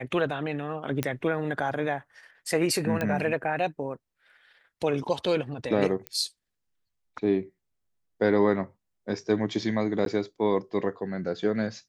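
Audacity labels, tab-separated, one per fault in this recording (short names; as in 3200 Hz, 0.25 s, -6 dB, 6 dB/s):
1.030000	1.030000	pop -12 dBFS
3.010000	3.010000	pop -15 dBFS
6.070000	6.070000	pop -18 dBFS
10.050000	10.060000	gap 12 ms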